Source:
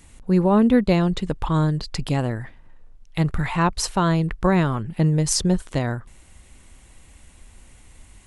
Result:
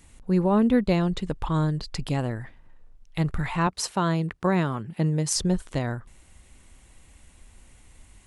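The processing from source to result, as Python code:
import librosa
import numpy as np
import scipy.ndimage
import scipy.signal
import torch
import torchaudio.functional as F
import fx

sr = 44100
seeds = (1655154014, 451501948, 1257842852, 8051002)

y = fx.highpass(x, sr, hz=120.0, slope=12, at=(3.67, 5.36))
y = y * librosa.db_to_amplitude(-4.0)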